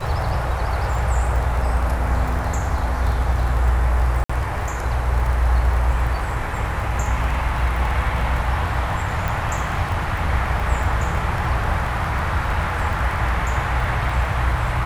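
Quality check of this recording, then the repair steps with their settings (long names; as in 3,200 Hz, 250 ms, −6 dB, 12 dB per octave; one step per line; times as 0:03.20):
surface crackle 26 per second −26 dBFS
0:04.24–0:04.29: drop-out 55 ms
0:09.28: click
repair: click removal
repair the gap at 0:04.24, 55 ms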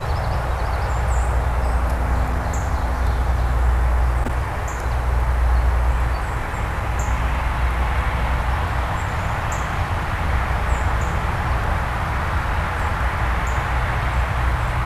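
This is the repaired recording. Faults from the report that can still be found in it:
none of them is left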